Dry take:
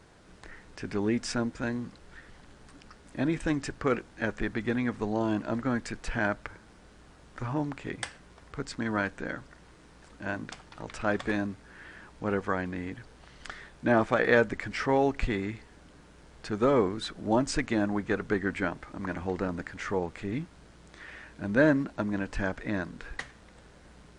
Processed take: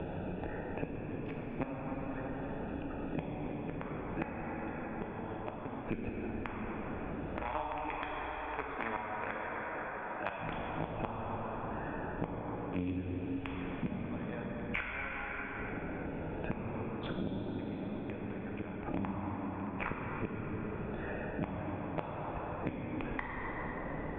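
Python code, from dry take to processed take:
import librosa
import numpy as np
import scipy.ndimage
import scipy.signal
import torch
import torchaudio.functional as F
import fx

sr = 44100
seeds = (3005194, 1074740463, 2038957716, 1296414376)

y = fx.wiener(x, sr, points=41)
y = fx.highpass(y, sr, hz=840.0, slope=12, at=(7.4, 10.39))
y = fx.gate_flip(y, sr, shuts_db=-26.0, range_db=-37)
y = scipy.signal.sosfilt(scipy.signal.cheby1(6, 9, 3500.0, 'lowpass', fs=sr, output='sos'), y)
y = fx.rev_plate(y, sr, seeds[0], rt60_s=3.3, hf_ratio=0.55, predelay_ms=0, drr_db=-2.5)
y = fx.band_squash(y, sr, depth_pct=100)
y = F.gain(torch.from_numpy(y), 12.0).numpy()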